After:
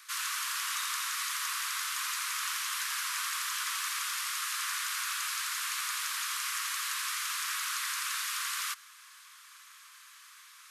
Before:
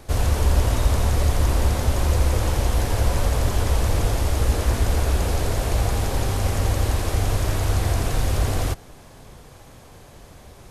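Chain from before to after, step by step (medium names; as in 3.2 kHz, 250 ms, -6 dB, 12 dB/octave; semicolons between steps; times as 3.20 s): steep high-pass 1.1 kHz 72 dB/octave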